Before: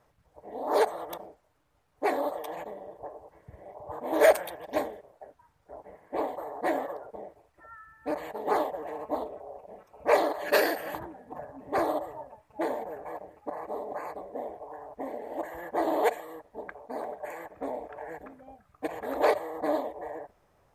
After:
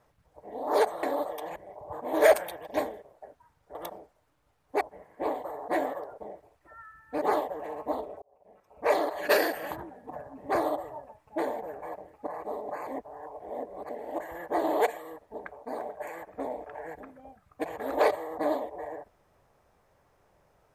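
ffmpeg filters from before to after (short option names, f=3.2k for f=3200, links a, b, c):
-filter_complex "[0:a]asplit=9[a][b][c][d][e][f][g][h][i];[a]atrim=end=1.032[j];[b]atrim=start=2.088:end=2.622[k];[c]atrim=start=3.548:end=5.742[l];[d]atrim=start=1.028:end=2.092[m];[e]atrim=start=5.738:end=8.152[n];[f]atrim=start=8.448:end=9.45,asetpts=PTS-STARTPTS,afade=t=out:st=0.998:d=0.004:c=hsin[o];[g]atrim=start=9.45:end=14.102,asetpts=PTS-STARTPTS,afade=t=in:d=0.9[p];[h]atrim=start=14.098:end=15.122,asetpts=PTS-STARTPTS,areverse[q];[i]atrim=start=15.118[r];[j][k]acrossfade=d=0.004:c1=hsin:c2=hsin[s];[s][l]acrossfade=d=0.004:c1=hsin:c2=hsin[t];[t][m]acrossfade=d=0.004:c1=hsin:c2=hsin[u];[u][n]acrossfade=d=0.004:c1=hsin:c2=hsin[v];[o][p]concat=n=2:v=0:a=1[w];[v][w]acrossfade=d=0.004:c1=hsin:c2=hsin[x];[x][q]acrossfade=d=0.004:c1=hsin:c2=hsin[y];[y][r]acrossfade=d=0.004:c1=hsin:c2=hsin"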